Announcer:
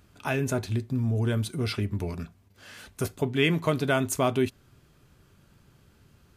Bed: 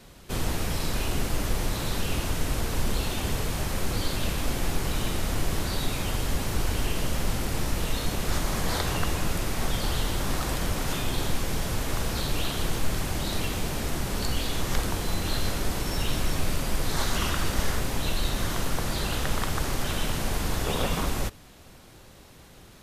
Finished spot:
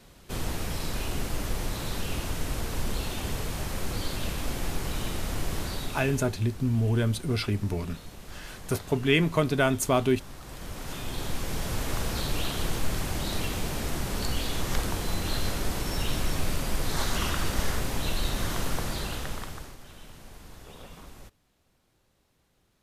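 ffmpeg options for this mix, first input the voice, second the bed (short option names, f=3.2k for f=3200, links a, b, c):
-filter_complex "[0:a]adelay=5700,volume=1dB[a];[1:a]volume=11.5dB,afade=t=out:st=5.64:d=0.71:silence=0.223872,afade=t=in:st=10.41:d=1.4:silence=0.177828,afade=t=out:st=18.72:d=1.05:silence=0.125893[b];[a][b]amix=inputs=2:normalize=0"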